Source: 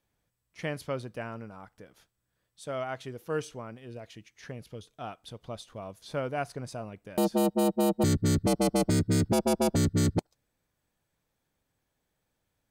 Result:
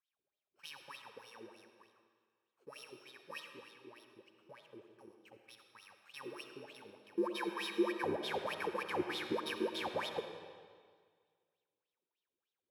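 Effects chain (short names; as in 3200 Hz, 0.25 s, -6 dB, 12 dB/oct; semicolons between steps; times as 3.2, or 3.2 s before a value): FFT order left unsorted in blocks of 64 samples; wah 3.3 Hz 340–3700 Hz, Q 11; digital reverb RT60 1.8 s, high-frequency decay 0.9×, pre-delay 25 ms, DRR 6 dB; gain +6.5 dB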